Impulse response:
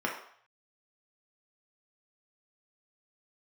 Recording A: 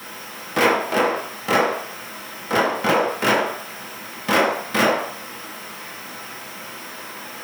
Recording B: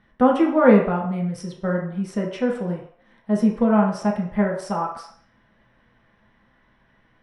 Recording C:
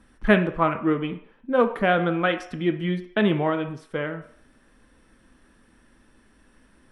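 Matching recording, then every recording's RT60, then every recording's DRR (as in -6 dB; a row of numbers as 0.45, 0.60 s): B; 0.60, 0.60, 0.60 s; -6.0, -2.0, 7.0 dB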